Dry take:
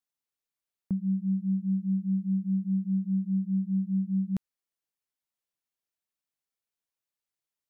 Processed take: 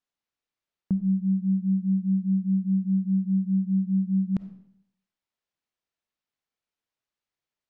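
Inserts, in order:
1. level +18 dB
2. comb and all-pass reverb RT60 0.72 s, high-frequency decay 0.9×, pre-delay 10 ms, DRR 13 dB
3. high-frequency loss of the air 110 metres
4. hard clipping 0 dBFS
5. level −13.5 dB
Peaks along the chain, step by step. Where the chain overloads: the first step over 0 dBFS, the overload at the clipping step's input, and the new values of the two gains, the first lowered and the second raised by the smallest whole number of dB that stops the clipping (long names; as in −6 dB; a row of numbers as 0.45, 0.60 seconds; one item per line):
−4.0, −4.0, −4.0, −4.0, −17.5 dBFS
no step passes full scale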